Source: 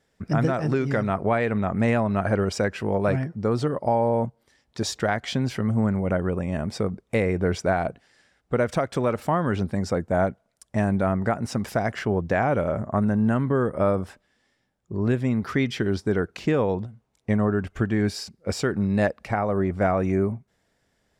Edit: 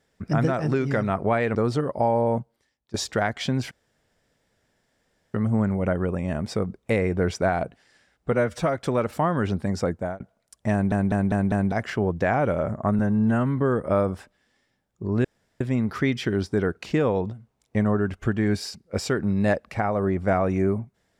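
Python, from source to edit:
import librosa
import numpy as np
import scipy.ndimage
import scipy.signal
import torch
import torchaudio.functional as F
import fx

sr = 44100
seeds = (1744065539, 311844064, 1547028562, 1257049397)

y = fx.edit(x, sr, fx.cut(start_s=1.55, length_s=1.87),
    fx.fade_out_to(start_s=4.26, length_s=0.55, curve='qua', floor_db=-20.0),
    fx.insert_room_tone(at_s=5.58, length_s=1.63),
    fx.stretch_span(start_s=8.56, length_s=0.3, factor=1.5),
    fx.fade_out_span(start_s=10.01, length_s=0.28),
    fx.stutter_over(start_s=10.81, slice_s=0.2, count=5),
    fx.stretch_span(start_s=13.08, length_s=0.39, factor=1.5),
    fx.insert_room_tone(at_s=15.14, length_s=0.36), tone=tone)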